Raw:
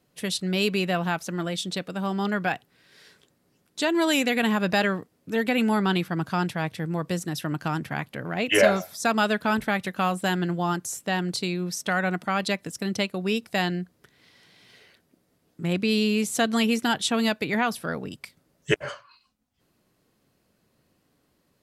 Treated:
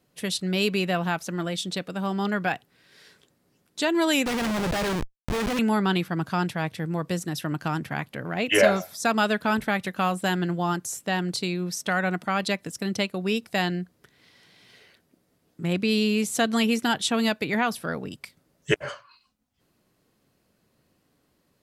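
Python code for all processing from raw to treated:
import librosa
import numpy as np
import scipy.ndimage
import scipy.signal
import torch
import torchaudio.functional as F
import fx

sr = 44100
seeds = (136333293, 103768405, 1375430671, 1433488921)

y = fx.chain(x, sr, fx.highpass(hz=190.0, slope=12),
    fx.schmitt(flips_db=-34.5),
    fx.high_shelf(hz=10000.0, db=-8.0), at=(4.26, 5.59))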